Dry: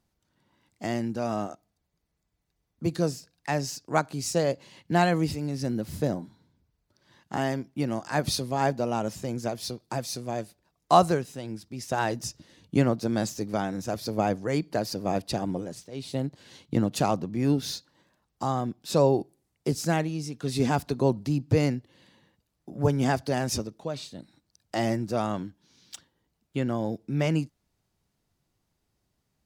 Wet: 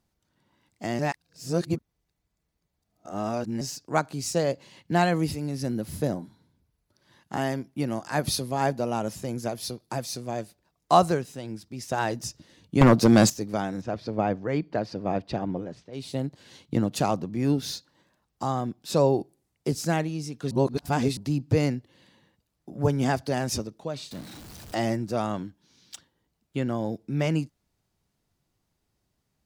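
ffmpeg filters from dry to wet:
-filter_complex "[0:a]asettb=1/sr,asplit=3[a][b][c];[a]atrim=end=5.194[d];[b]atrim=start=5.19:end=10.05,asetpts=PTS-STARTPTS,afade=t=in:d=0.004:c=qsin,afade=t=out:st=4.856:d=0.004:c=qsin,equalizer=f=11k:w=5.6:g=10.5[e];[c]atrim=start=10.046[f];[d][e]acrossfade=d=0.004:c1=hsin:c2=qsin[g];[g][f]acrossfade=d=0.004:c1=qsin:c2=hsin,asettb=1/sr,asplit=3[h][i][j];[h]atrim=end=12.814[k];[i]atrim=start=12.81:end=13.3,asetpts=PTS-STARTPTS,afade=t=in:d=0.004:c=qsin,afade=t=out:st=0.486:d=0.004:c=qsin,aeval=exprs='0.355*sin(PI/2*2.51*val(0)/0.355)':c=same[l];[j]atrim=start=13.296[m];[k][l]acrossfade=d=0.004:c1=hsin:c2=qsin[n];[n][m]acrossfade=d=0.004:c1=qsin:c2=hsin,asplit=3[o][p][q];[o]afade=t=out:st=13.8:d=0.02[r];[p]lowpass=3k,afade=t=in:st=13.8:d=0.02,afade=t=out:st=15.92:d=0.02[s];[q]afade=t=in:st=15.92:d=0.02[t];[r][s][t]amix=inputs=3:normalize=0,asettb=1/sr,asplit=3[u][v][w];[u]atrim=end=24.114[x];[v]atrim=start=24.11:end=24.75,asetpts=PTS-STARTPTS,afade=t=in:d=0.004:c=qsin,afade=t=out:st=0.636:d=0.004:c=qsin,aeval=exprs='val(0)+0.5*0.0119*sgn(val(0))':c=same[y];[w]atrim=start=24.746[z];[x][y]acrossfade=d=0.004:c1=hsin:c2=qsin[aa];[aa][z]acrossfade=d=0.004:c1=qsin:c2=hsin,asplit=5[ab][ac][ad][ae][af];[ab]atrim=end=0.992[ag];[ac]atrim=start=0.988:end=3.612,asetpts=PTS-STARTPTS,areverse[ah];[ad]atrim=start=3.608:end=20.512[ai];[ae]atrim=start=20.508:end=21.172,asetpts=PTS-STARTPTS,areverse[aj];[af]atrim=start=21.168[ak];[ag][ah]acrossfade=d=0.004:c1=hsin:c2=hsin[al];[al][ai]acrossfade=d=0.004:c1=hsin:c2=hsin[am];[am][aj]acrossfade=d=0.004:c1=hsin:c2=hsin[an];[an][ak]acrossfade=d=0.004:c1=hsin:c2=hsin"

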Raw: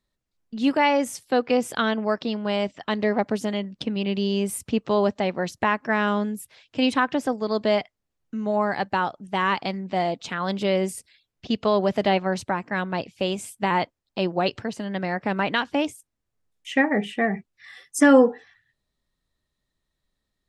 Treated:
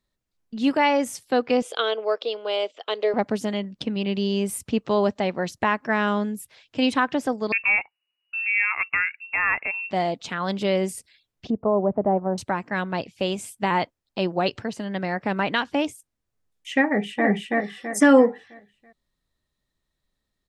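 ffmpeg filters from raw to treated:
-filter_complex "[0:a]asettb=1/sr,asplit=3[a][b][c];[a]atrim=end=1.624[d];[b]atrim=start=1.62:end=3.14,asetpts=PTS-STARTPTS,afade=t=in:d=0.004:c=qsin,afade=t=out:st=1.516:d=0.004:c=qsin,highpass=f=430:w=0.5412,highpass=f=430:w=1.3066,equalizer=f=460:t=q:w=4:g=9,equalizer=f=930:t=q:w=4:g=-5,equalizer=f=1.8k:t=q:w=4:g=-9,equalizer=f=3.3k:t=q:w=4:g=6,equalizer=f=5.6k:t=q:w=4:g=-5,equalizer=f=8k:t=q:w=4:g=-5,lowpass=f=9.5k:w=0.5412,lowpass=f=9.5k:w=1.3066[e];[c]atrim=start=3.136[f];[d][e]acrossfade=d=0.004:c1=hsin:c2=qsin[g];[g][f]acrossfade=d=0.004:c1=qsin:c2=hsin,asettb=1/sr,asplit=3[h][i][j];[h]atrim=end=7.524[k];[i]atrim=start=7.52:end=9.91,asetpts=PTS-STARTPTS,afade=t=in:d=0.004:c=qsin,afade=t=out:st=2.386:d=0.004:c=qsin,lowpass=f=2.5k:t=q:w=0.5098,lowpass=f=2.5k:t=q:w=0.6013,lowpass=f=2.5k:t=q:w=0.9,lowpass=f=2.5k:t=q:w=2.563,afreqshift=-2900[l];[j]atrim=start=9.906[m];[k][l]acrossfade=d=0.004:c1=hsin:c2=qsin[n];[n][m]acrossfade=d=0.004:c1=qsin:c2=hsin,asettb=1/sr,asplit=3[o][p][q];[o]atrim=end=11.504[r];[p]atrim=start=11.5:end=12.38,asetpts=PTS-STARTPTS,afade=t=in:d=0.004:c=qsin,afade=t=out:st=0.876:d=0.004:c=qsin,lowpass=f=1k:w=0.5412,lowpass=f=1k:w=1.3066[s];[q]atrim=start=12.376[t];[r][s]acrossfade=d=0.004:c1=hsin:c2=qsin[u];[u][t]acrossfade=d=0.004:c1=qsin:c2=hsin,asplit=2[v][w];[w]afade=t=in:st=16.85:d=0.01,afade=t=out:st=17.27:d=0.01,aecho=0:1:330|660|990|1320|1650:0.944061|0.377624|0.15105|0.0604199|0.024168[x];[v][x]amix=inputs=2:normalize=0"

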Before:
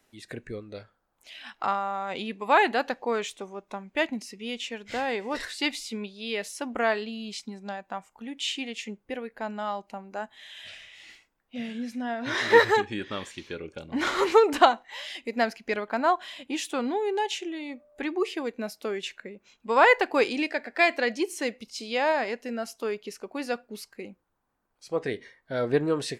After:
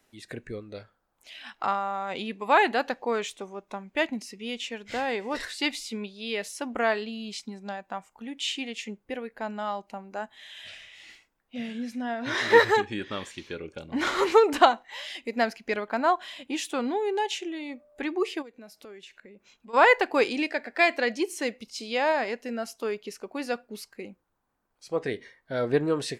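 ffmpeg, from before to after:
-filter_complex "[0:a]asplit=3[a][b][c];[a]afade=t=out:st=18.41:d=0.02[d];[b]acompressor=threshold=-48dB:ratio=3:attack=3.2:release=140:knee=1:detection=peak,afade=t=in:st=18.41:d=0.02,afade=t=out:st=19.73:d=0.02[e];[c]afade=t=in:st=19.73:d=0.02[f];[d][e][f]amix=inputs=3:normalize=0"

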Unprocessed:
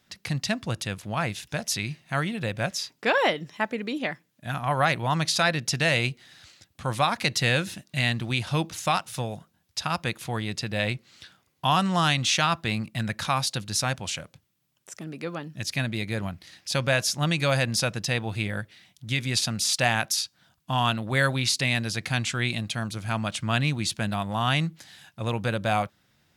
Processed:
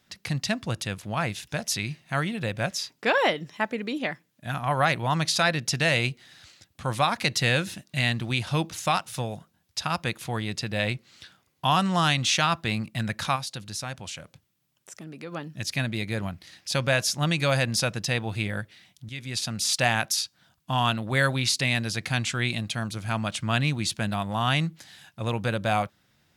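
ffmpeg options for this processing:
-filter_complex "[0:a]asplit=3[a][b][c];[a]afade=t=out:st=13.35:d=0.02[d];[b]acompressor=threshold=-43dB:ratio=1.5:attack=3.2:release=140:knee=1:detection=peak,afade=t=in:st=13.35:d=0.02,afade=t=out:st=15.31:d=0.02[e];[c]afade=t=in:st=15.31:d=0.02[f];[d][e][f]amix=inputs=3:normalize=0,asplit=2[g][h];[g]atrim=end=19.09,asetpts=PTS-STARTPTS,afade=t=out:st=19.086:d=0.004:c=hsin:silence=0.223872[i];[h]atrim=start=19.09,asetpts=PTS-STARTPTS,afade=t=in:d=0.64:silence=0.223872[j];[i][j]concat=n=2:v=0:a=1"

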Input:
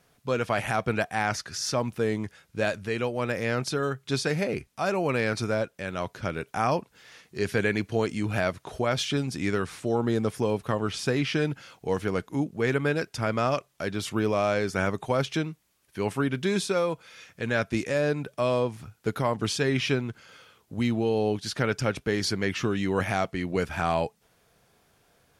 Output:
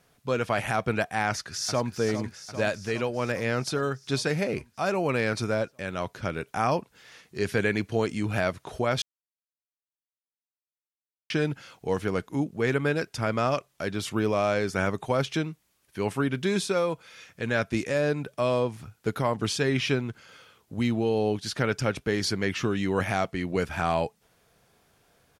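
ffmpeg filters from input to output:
-filter_complex "[0:a]asplit=2[a][b];[b]afade=t=in:st=1.28:d=0.01,afade=t=out:st=1.92:d=0.01,aecho=0:1:400|800|1200|1600|2000|2400|2800|3200|3600|4000:0.298538|0.208977|0.146284|0.102399|0.071679|0.0501753|0.0351227|0.0245859|0.0172101|0.0120471[c];[a][c]amix=inputs=2:normalize=0,asplit=3[d][e][f];[d]atrim=end=9.02,asetpts=PTS-STARTPTS,afade=t=out:st=9.016:d=0.004:c=hsin[g];[e]atrim=start=9.02:end=11.3,asetpts=PTS-STARTPTS,volume=0[h];[f]atrim=start=11.3,asetpts=PTS-STARTPTS,afade=t=in:d=0.004:c=hsin[i];[g][h][i]concat=n=3:v=0:a=1"

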